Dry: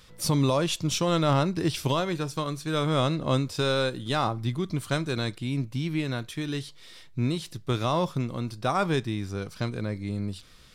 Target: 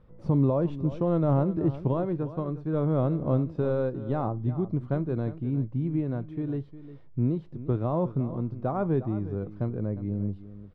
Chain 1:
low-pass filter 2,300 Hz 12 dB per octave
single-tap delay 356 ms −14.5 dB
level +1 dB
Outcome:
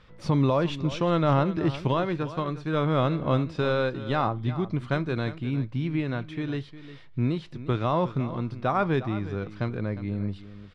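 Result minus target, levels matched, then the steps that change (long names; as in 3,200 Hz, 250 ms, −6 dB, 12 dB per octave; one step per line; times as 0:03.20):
2,000 Hz band +14.0 dB
change: low-pass filter 650 Hz 12 dB per octave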